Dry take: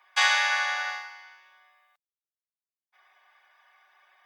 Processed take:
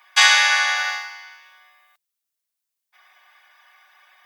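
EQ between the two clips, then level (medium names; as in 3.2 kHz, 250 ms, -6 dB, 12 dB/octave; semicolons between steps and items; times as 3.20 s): tilt EQ +2.5 dB/octave; +5.5 dB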